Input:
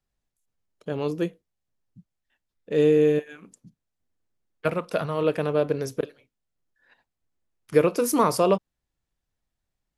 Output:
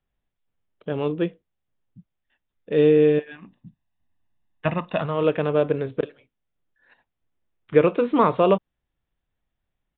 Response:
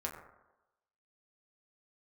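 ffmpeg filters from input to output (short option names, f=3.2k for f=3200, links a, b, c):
-filter_complex "[0:a]aresample=8000,aresample=44100,asettb=1/sr,asplit=3[a][b][c];[a]atrim=end=3.314[d];[b]atrim=start=3.31:end=5.01,asetpts=PTS-STARTPTS,afade=t=in:d=0.004:c=qsin,afade=t=out:st=1.696:d=0.004:c=qsin,aecho=1:1:1.1:0.7,atrim=end_sample=74970[e];[c]atrim=start=5.006[f];[d][e]acrossfade=d=0.004:c1=hsin:c2=qsin[g];[g][f]acrossfade=d=0.004:c1=qsin:c2=hsin,volume=2.5dB"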